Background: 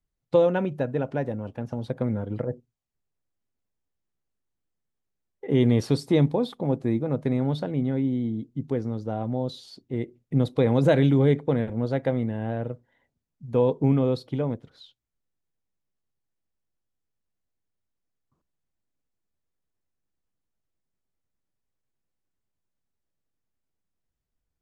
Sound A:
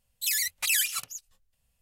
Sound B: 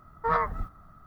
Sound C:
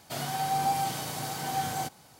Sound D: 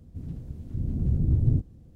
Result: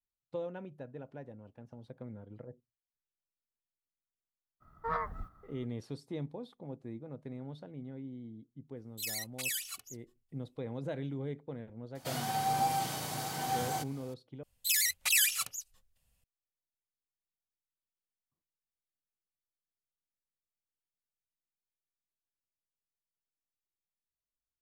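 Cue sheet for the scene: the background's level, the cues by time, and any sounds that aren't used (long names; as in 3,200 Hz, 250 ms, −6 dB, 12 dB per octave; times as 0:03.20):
background −19 dB
0:04.60: mix in B −9 dB, fades 0.02 s
0:08.76: mix in A −12.5 dB + comb filter 2.7 ms, depth 67%
0:11.95: mix in C −3 dB
0:14.43: overwrite with A −1.5 dB
not used: D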